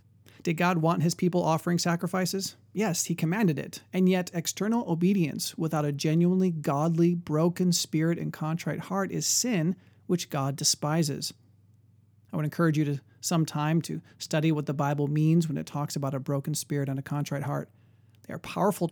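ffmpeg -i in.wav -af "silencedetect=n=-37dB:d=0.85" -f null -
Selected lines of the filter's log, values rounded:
silence_start: 11.31
silence_end: 12.33 | silence_duration: 1.02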